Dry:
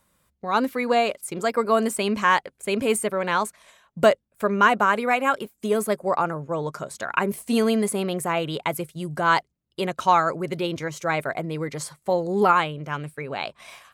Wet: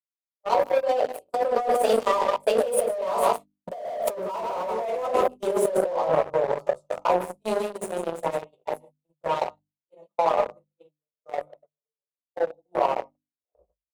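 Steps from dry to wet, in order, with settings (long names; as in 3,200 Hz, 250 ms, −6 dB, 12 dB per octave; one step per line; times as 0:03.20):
turntable brake at the end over 1.64 s
source passing by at 0:04.03, 27 m/s, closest 4.1 metres
phaser with its sweep stopped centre 670 Hz, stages 4
single-tap delay 154 ms −10 dB
rectangular room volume 170 cubic metres, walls furnished, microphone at 2.7 metres
noise gate −52 dBFS, range −49 dB
parametric band 110 Hz −14.5 dB 0.43 octaves
in parallel at −4 dB: fuzz pedal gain 39 dB, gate −48 dBFS
on the sum: parametric band 550 Hz +14 dB 2.1 octaves
mains-hum notches 50/100/150/200/250/300 Hz
compressor whose output falls as the input rises −16 dBFS, ratio −1
level −8.5 dB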